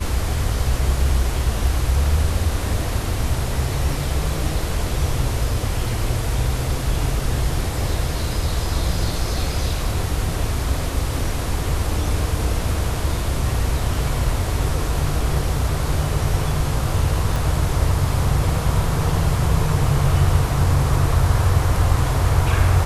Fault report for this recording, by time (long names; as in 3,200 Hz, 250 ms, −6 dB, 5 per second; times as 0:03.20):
0:17.36: click